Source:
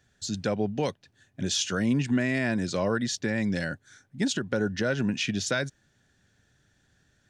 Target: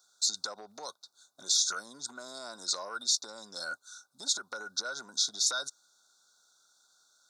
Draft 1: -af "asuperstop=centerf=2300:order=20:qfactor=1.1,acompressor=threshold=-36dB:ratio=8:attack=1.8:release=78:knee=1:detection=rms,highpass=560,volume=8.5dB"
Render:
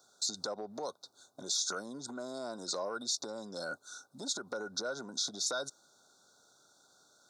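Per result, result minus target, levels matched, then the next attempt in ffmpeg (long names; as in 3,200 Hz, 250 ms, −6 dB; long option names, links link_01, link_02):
500 Hz band +12.0 dB; downward compressor: peak gain reduction +6.5 dB
-af "asuperstop=centerf=2300:order=20:qfactor=1.1,acompressor=threshold=-36dB:ratio=8:attack=1.8:release=78:knee=1:detection=rms,highpass=1400,volume=8.5dB"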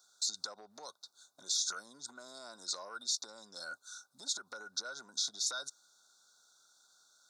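downward compressor: peak gain reduction +6.5 dB
-af "asuperstop=centerf=2300:order=20:qfactor=1.1,acompressor=threshold=-28.5dB:ratio=8:attack=1.8:release=78:knee=1:detection=rms,highpass=1400,volume=8.5dB"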